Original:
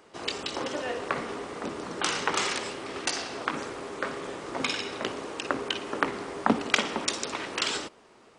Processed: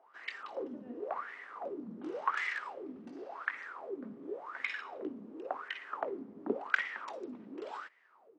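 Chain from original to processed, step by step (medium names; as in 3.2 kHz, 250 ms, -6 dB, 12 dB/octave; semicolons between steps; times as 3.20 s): wah-wah 0.91 Hz 210–2000 Hz, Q 10; trim +5 dB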